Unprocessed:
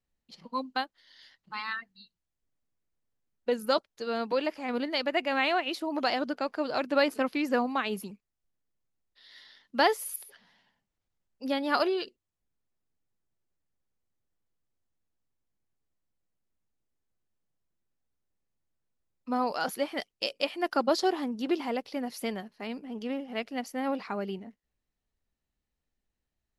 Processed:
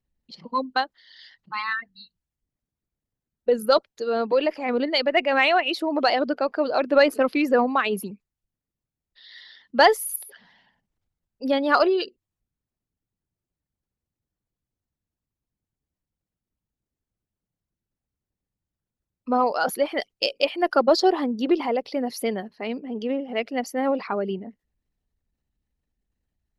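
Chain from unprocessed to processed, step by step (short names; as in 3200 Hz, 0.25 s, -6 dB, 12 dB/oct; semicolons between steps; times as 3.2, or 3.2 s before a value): formant sharpening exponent 1.5; added harmonics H 2 -30 dB, 3 -31 dB, 7 -44 dB, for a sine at -12.5 dBFS; gain +8.5 dB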